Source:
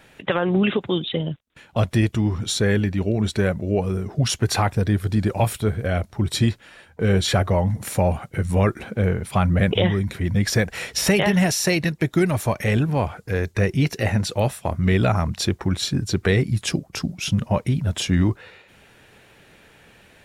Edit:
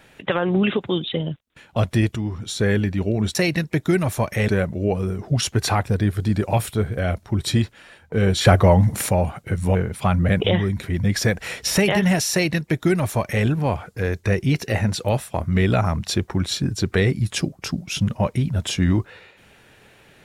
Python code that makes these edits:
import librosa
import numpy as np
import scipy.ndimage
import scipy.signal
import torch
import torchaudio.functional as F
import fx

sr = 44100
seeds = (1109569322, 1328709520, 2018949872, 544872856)

y = fx.edit(x, sr, fx.clip_gain(start_s=2.16, length_s=0.43, db=-5.0),
    fx.clip_gain(start_s=7.32, length_s=0.64, db=6.0),
    fx.cut(start_s=8.62, length_s=0.44),
    fx.duplicate(start_s=11.63, length_s=1.13, to_s=3.35), tone=tone)